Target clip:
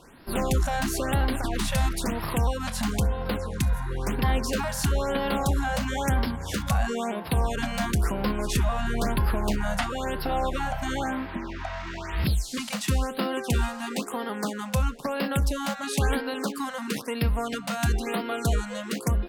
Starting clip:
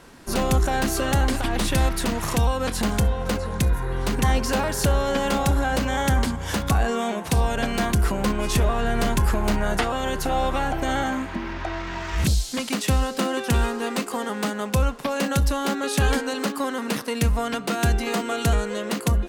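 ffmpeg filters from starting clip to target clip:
ffmpeg -i in.wav -af "afftfilt=real='re*(1-between(b*sr/1024,330*pow(7800/330,0.5+0.5*sin(2*PI*1*pts/sr))/1.41,330*pow(7800/330,0.5+0.5*sin(2*PI*1*pts/sr))*1.41))':imag='im*(1-between(b*sr/1024,330*pow(7800/330,0.5+0.5*sin(2*PI*1*pts/sr))/1.41,330*pow(7800/330,0.5+0.5*sin(2*PI*1*pts/sr))*1.41))':win_size=1024:overlap=0.75,volume=-3.5dB" out.wav

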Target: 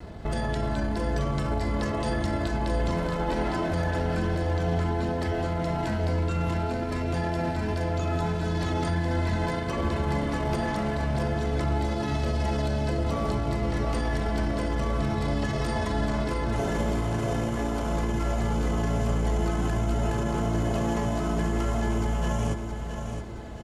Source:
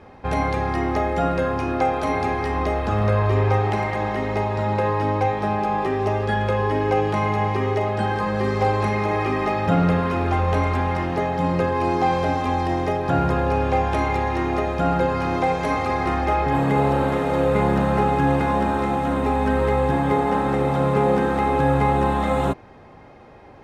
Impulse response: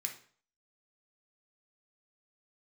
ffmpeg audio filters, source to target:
-filter_complex "[0:a]afftfilt=real='re*lt(hypot(re,im),0.562)':imag='im*lt(hypot(re,im),0.562)':win_size=1024:overlap=0.75,bass=frequency=250:gain=9,treble=frequency=4000:gain=14,asplit=2[link_01][link_02];[link_02]acompressor=threshold=-30dB:ratio=6,volume=-2dB[link_03];[link_01][link_03]amix=inputs=2:normalize=0,alimiter=limit=-15.5dB:level=0:latency=1:release=22,asetrate=36028,aresample=44100,atempo=1.22405,aecho=1:1:668|1336|2004|2672|3340:0.422|0.177|0.0744|0.0312|0.0131,volume=-4.5dB"

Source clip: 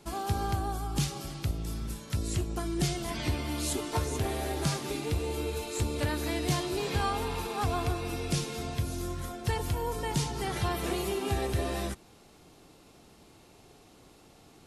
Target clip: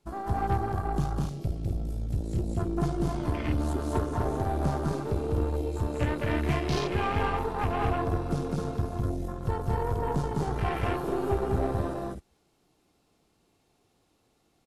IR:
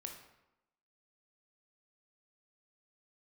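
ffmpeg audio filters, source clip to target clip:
-af "aecho=1:1:204.1|256.6:0.891|0.631,afwtdn=0.0178,aeval=exprs='0.188*(cos(1*acos(clip(val(0)/0.188,-1,1)))-cos(1*PI/2))+0.015*(cos(6*acos(clip(val(0)/0.188,-1,1)))-cos(6*PI/2))':channel_layout=same"

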